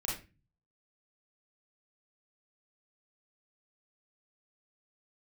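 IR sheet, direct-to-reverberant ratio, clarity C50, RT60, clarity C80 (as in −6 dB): −4.5 dB, 2.5 dB, 0.30 s, 10.0 dB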